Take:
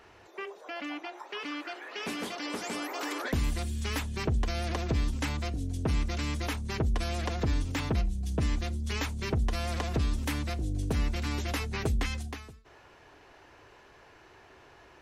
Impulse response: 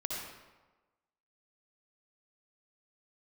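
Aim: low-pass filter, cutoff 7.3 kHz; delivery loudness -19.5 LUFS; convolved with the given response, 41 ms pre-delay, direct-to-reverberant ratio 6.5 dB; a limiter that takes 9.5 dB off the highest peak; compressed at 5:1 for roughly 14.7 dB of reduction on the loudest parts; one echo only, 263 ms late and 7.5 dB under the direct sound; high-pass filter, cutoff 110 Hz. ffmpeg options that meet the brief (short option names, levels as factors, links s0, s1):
-filter_complex "[0:a]highpass=110,lowpass=7300,acompressor=threshold=0.00631:ratio=5,alimiter=level_in=5.96:limit=0.0631:level=0:latency=1,volume=0.168,aecho=1:1:263:0.422,asplit=2[s0][s1];[1:a]atrim=start_sample=2205,adelay=41[s2];[s1][s2]afir=irnorm=-1:irlink=0,volume=0.335[s3];[s0][s3]amix=inputs=2:normalize=0,volume=26.6"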